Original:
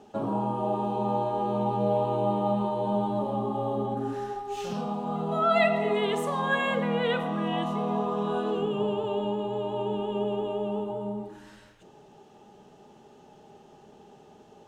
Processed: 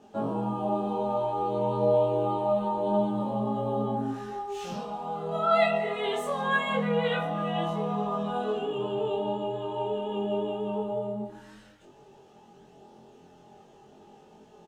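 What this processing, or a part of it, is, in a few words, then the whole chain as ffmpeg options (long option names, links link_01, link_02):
double-tracked vocal: -filter_complex "[0:a]asplit=2[link_01][link_02];[link_02]adelay=23,volume=-2dB[link_03];[link_01][link_03]amix=inputs=2:normalize=0,flanger=delay=18:depth=4.8:speed=0.27"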